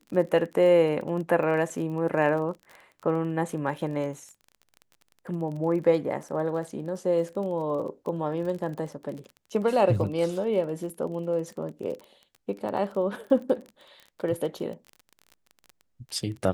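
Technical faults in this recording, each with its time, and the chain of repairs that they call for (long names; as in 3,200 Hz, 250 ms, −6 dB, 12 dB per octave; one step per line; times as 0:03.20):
surface crackle 30 per second −35 dBFS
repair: click removal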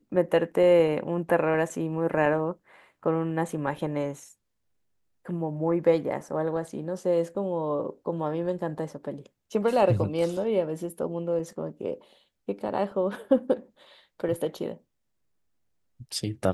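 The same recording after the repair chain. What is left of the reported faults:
none of them is left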